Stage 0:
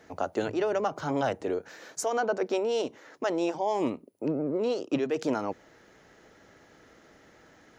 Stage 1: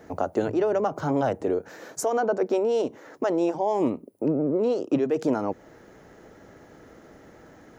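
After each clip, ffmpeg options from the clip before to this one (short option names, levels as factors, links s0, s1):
-filter_complex "[0:a]equalizer=f=3600:w=0.4:g=-10.5,asplit=2[s0][s1];[s1]acompressor=threshold=0.0158:ratio=6,volume=1.06[s2];[s0][s2]amix=inputs=2:normalize=0,volume=1.41"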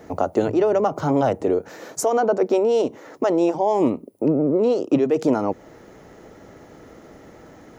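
-af "equalizer=f=1600:t=o:w=0.22:g=-6,volume=1.78"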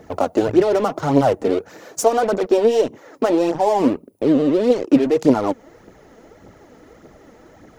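-filter_complex "[0:a]asplit=2[s0][s1];[s1]acrusher=bits=3:mix=0:aa=0.5,volume=0.531[s2];[s0][s2]amix=inputs=2:normalize=0,aphaser=in_gain=1:out_gain=1:delay=4.6:decay=0.5:speed=1.7:type=triangular,volume=0.75"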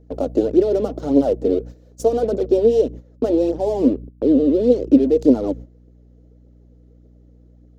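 -af "equalizer=f=125:t=o:w=1:g=-7,equalizer=f=250:t=o:w=1:g=12,equalizer=f=500:t=o:w=1:g=11,equalizer=f=1000:t=o:w=1:g=-8,equalizer=f=2000:t=o:w=1:g=-6,equalizer=f=4000:t=o:w=1:g=5,aeval=exprs='val(0)+0.0708*(sin(2*PI*60*n/s)+sin(2*PI*2*60*n/s)/2+sin(2*PI*3*60*n/s)/3+sin(2*PI*4*60*n/s)/4+sin(2*PI*5*60*n/s)/5)':c=same,agate=range=0.2:threshold=0.1:ratio=16:detection=peak,volume=0.299"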